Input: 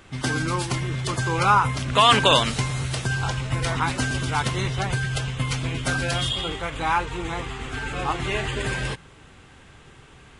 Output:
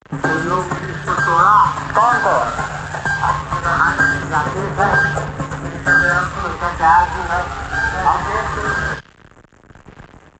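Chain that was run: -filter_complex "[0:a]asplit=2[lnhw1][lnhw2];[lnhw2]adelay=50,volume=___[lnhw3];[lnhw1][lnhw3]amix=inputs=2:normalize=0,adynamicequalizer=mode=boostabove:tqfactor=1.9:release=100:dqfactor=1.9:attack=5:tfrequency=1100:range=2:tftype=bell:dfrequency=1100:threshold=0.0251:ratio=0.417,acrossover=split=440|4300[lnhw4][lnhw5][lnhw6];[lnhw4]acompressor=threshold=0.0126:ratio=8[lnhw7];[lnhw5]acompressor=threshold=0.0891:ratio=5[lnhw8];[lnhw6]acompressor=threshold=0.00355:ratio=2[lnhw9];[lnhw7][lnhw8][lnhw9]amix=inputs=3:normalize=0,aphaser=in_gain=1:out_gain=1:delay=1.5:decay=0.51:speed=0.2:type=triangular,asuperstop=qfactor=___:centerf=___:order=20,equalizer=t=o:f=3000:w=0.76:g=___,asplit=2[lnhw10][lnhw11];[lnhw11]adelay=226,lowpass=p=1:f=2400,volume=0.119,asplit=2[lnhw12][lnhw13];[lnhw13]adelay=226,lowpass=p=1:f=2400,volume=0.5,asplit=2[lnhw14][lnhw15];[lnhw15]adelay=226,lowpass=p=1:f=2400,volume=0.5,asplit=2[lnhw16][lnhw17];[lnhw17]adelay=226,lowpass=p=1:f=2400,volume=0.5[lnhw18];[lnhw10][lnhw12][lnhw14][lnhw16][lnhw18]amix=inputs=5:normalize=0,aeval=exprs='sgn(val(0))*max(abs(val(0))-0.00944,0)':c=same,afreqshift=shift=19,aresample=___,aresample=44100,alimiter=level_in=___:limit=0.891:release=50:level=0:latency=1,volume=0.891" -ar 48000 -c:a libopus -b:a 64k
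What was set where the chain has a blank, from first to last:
0.398, 0.69, 3600, 14, 16000, 4.47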